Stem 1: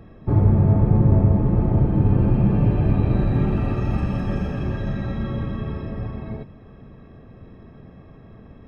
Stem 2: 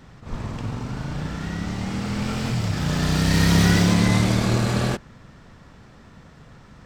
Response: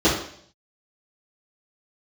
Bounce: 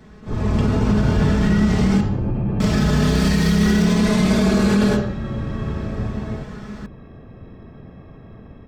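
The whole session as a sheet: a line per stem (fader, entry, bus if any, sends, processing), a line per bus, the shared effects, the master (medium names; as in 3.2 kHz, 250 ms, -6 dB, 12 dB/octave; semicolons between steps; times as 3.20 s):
-7.0 dB, 0.00 s, no send, peak limiter -16.5 dBFS, peak gain reduction 11 dB
-5.0 dB, 0.00 s, muted 2.01–2.60 s, send -21.5 dB, comb 4.7 ms, depth 92%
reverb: on, RT60 0.60 s, pre-delay 3 ms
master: level rider gain up to 10.5 dB; peak limiter -8.5 dBFS, peak gain reduction 7.5 dB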